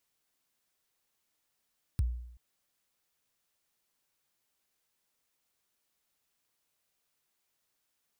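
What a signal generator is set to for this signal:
synth kick length 0.38 s, from 120 Hz, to 60 Hz, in 26 ms, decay 0.75 s, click on, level −22.5 dB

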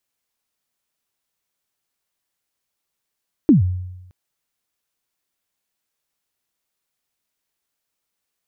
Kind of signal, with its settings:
synth kick length 0.62 s, from 340 Hz, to 91 Hz, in 131 ms, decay 0.97 s, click off, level −6 dB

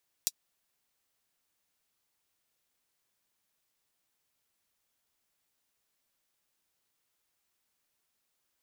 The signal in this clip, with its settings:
closed synth hi-hat, high-pass 4,800 Hz, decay 0.05 s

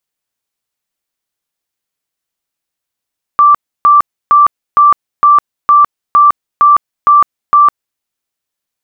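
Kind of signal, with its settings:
tone bursts 1,170 Hz, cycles 183, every 0.46 s, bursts 10, −2.5 dBFS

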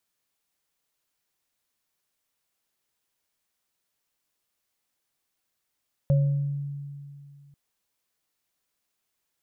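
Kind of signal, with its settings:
inharmonic partials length 1.44 s, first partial 142 Hz, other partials 551 Hz, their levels −10 dB, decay 2.47 s, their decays 0.65 s, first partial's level −16.5 dB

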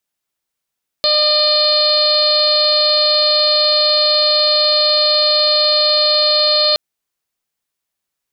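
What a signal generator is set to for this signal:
steady harmonic partials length 5.72 s, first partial 604 Hz, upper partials −8/−17/−14.5/−11/−4/4/−4 dB, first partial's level −17 dB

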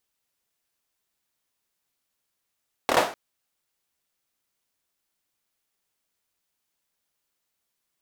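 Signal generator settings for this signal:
synth clap length 0.25 s, apart 26 ms, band 640 Hz, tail 0.39 s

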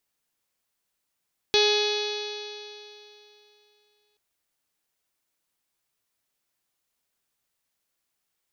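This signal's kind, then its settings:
stiff-string partials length 2.63 s, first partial 417 Hz, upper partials −9.5/−19.5/−13/−18/−6.5/−14/−3/−6.5/−5/−11/−19/−15/−20 dB, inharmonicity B 0.00067, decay 2.89 s, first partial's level −20 dB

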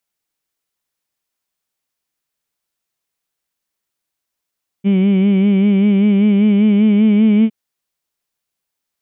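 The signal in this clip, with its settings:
vowel by formant synthesis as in heed, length 2.66 s, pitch 192 Hz, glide +2 semitones, vibrato 5.1 Hz, vibrato depth 0.7 semitones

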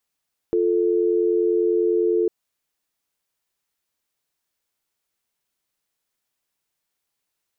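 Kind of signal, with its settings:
call progress tone dial tone, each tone −19.5 dBFS 1.75 s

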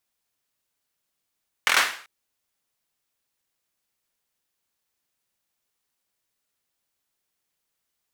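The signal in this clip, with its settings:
synth clap length 0.39 s, bursts 5, apart 24 ms, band 1,700 Hz, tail 0.47 s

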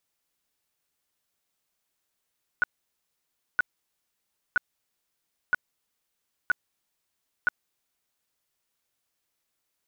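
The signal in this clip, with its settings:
tone bursts 1,470 Hz, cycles 24, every 0.97 s, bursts 6, −17.5 dBFS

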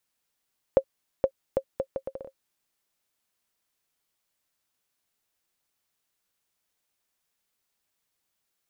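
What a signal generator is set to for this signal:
bouncing ball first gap 0.47 s, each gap 0.7, 537 Hz, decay 70 ms −7.5 dBFS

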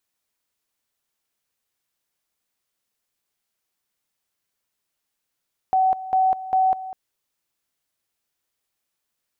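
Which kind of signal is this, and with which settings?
tone at two levels in turn 755 Hz −15 dBFS, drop 15 dB, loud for 0.20 s, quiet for 0.20 s, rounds 3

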